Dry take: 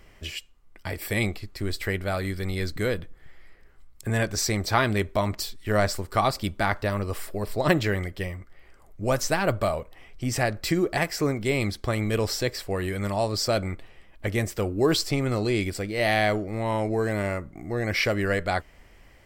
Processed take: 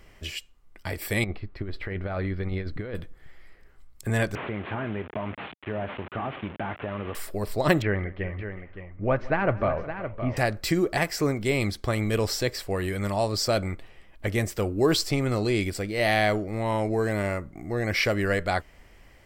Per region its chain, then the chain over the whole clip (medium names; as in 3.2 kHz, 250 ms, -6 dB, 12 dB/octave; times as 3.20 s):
1.24–2.95 s: distance through air 400 m + compressor with a negative ratio -29 dBFS, ratio -0.5
4.35–7.15 s: one-bit delta coder 16 kbps, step -31.5 dBFS + high-pass 120 Hz + compression 5:1, threshold -27 dBFS
7.82–10.37 s: low-pass 2.4 kHz 24 dB/octave + multi-tap echo 166/364/566 ms -20/-18.5/-10 dB
whole clip: none